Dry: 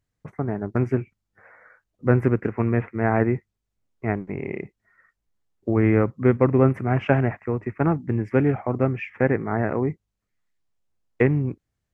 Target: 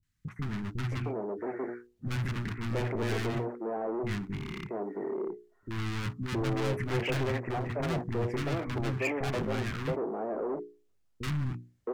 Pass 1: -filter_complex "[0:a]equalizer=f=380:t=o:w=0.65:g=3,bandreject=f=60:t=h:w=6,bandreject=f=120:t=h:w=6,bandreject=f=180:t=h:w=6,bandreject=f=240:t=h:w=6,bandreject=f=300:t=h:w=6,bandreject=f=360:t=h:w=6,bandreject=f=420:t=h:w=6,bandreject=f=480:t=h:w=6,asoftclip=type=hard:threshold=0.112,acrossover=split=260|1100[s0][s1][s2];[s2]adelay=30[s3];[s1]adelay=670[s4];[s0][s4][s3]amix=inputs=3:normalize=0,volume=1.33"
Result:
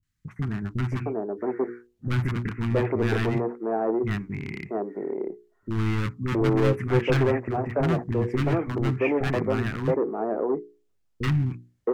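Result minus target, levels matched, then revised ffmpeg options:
hard clipper: distortion -5 dB
-filter_complex "[0:a]equalizer=f=380:t=o:w=0.65:g=3,bandreject=f=60:t=h:w=6,bandreject=f=120:t=h:w=6,bandreject=f=180:t=h:w=6,bandreject=f=240:t=h:w=6,bandreject=f=300:t=h:w=6,bandreject=f=360:t=h:w=6,bandreject=f=420:t=h:w=6,bandreject=f=480:t=h:w=6,asoftclip=type=hard:threshold=0.0316,acrossover=split=260|1100[s0][s1][s2];[s2]adelay=30[s3];[s1]adelay=670[s4];[s0][s4][s3]amix=inputs=3:normalize=0,volume=1.33"

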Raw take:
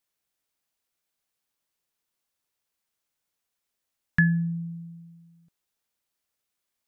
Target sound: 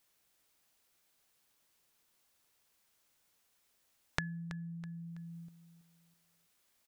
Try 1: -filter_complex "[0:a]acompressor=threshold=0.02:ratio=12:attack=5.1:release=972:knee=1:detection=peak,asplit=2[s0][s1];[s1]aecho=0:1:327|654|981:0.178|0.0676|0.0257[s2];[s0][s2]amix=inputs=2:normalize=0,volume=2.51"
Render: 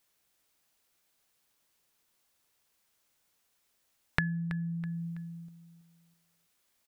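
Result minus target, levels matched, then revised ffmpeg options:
compression: peak gain reduction -8.5 dB
-filter_complex "[0:a]acompressor=threshold=0.00668:ratio=12:attack=5.1:release=972:knee=1:detection=peak,asplit=2[s0][s1];[s1]aecho=0:1:327|654|981:0.178|0.0676|0.0257[s2];[s0][s2]amix=inputs=2:normalize=0,volume=2.51"

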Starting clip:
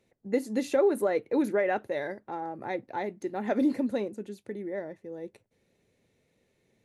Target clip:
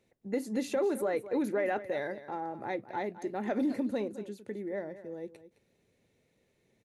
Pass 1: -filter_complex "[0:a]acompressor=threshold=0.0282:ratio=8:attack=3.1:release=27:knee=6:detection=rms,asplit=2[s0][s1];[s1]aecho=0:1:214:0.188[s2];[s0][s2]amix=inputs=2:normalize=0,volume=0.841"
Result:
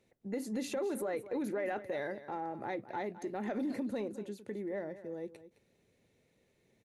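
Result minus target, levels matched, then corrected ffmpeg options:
compression: peak gain reduction +6.5 dB
-filter_complex "[0:a]acompressor=threshold=0.0668:ratio=8:attack=3.1:release=27:knee=6:detection=rms,asplit=2[s0][s1];[s1]aecho=0:1:214:0.188[s2];[s0][s2]amix=inputs=2:normalize=0,volume=0.841"

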